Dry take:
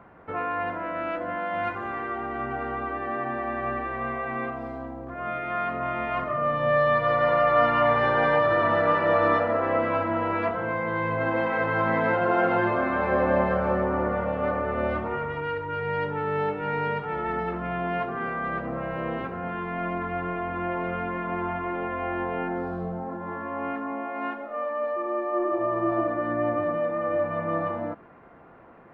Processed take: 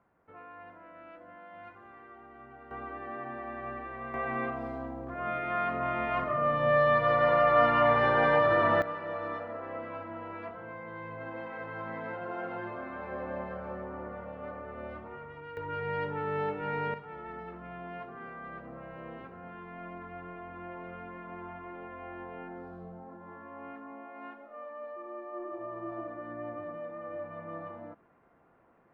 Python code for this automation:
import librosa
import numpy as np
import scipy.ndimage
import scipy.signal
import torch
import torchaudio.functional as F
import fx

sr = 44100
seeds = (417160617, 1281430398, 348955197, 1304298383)

y = fx.gain(x, sr, db=fx.steps((0.0, -20.0), (2.71, -10.0), (4.14, -2.5), (8.82, -15.0), (15.57, -5.5), (16.94, -14.0)))